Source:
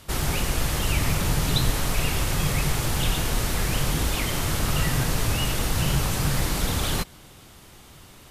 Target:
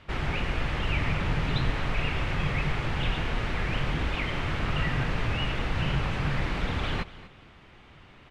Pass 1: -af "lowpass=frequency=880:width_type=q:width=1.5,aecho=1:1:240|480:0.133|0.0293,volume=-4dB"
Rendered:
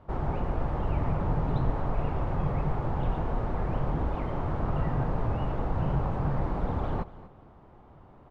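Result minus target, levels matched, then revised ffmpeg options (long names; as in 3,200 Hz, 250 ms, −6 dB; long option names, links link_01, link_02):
2,000 Hz band −13.0 dB
-af "lowpass=frequency=2400:width_type=q:width=1.5,aecho=1:1:240|480:0.133|0.0293,volume=-4dB"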